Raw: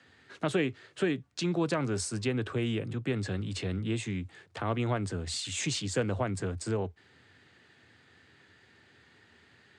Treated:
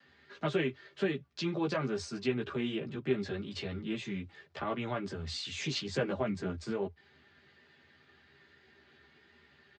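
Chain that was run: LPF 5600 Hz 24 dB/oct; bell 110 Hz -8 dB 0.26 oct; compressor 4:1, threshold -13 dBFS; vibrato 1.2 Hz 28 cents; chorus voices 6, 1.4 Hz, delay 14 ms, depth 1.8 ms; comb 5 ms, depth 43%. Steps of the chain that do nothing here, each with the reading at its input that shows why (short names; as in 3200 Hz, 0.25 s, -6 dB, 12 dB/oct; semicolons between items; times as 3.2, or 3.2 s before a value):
compressor, threshold -13 dBFS: input peak -17.0 dBFS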